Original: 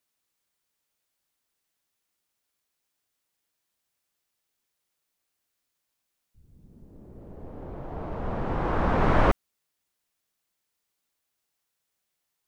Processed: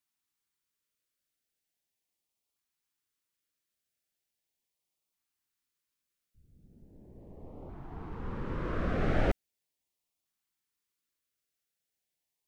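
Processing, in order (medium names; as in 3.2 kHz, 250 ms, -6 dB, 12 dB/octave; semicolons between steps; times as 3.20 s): LFO notch saw up 0.39 Hz 500–1700 Hz; trim -6 dB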